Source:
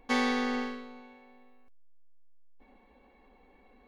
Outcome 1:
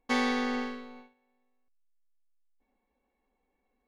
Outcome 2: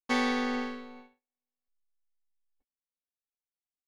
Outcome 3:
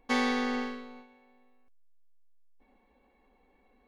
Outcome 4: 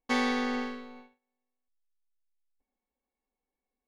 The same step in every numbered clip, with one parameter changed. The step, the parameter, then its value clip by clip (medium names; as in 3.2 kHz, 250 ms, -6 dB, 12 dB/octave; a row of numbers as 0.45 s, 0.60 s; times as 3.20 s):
gate, range: -18 dB, -54 dB, -6 dB, -30 dB